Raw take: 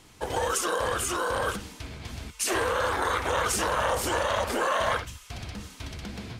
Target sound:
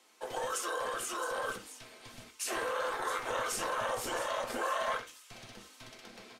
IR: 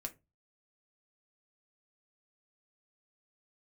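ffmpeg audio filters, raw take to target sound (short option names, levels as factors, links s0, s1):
-filter_complex "[0:a]acrossover=split=310|1600|2900[s0][s1][s2][s3];[s0]acrusher=bits=4:mix=0:aa=0.5[s4];[s3]aecho=1:1:666:0.282[s5];[s4][s1][s2][s5]amix=inputs=4:normalize=0[s6];[1:a]atrim=start_sample=2205,atrim=end_sample=4410[s7];[s6][s7]afir=irnorm=-1:irlink=0,volume=0.531"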